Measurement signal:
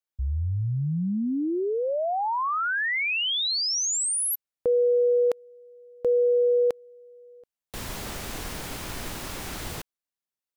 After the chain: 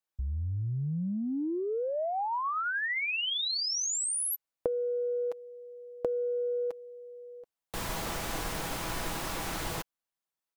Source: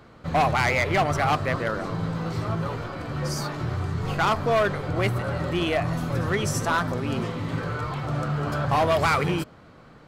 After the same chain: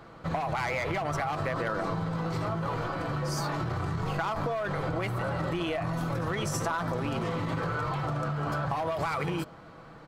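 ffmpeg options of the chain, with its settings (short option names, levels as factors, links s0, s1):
-af "equalizer=f=900:t=o:w=1.5:g=5,aecho=1:1:6.1:0.33,acompressor=threshold=0.0251:ratio=12:attack=37:release=28:knee=1:detection=peak,volume=0.841"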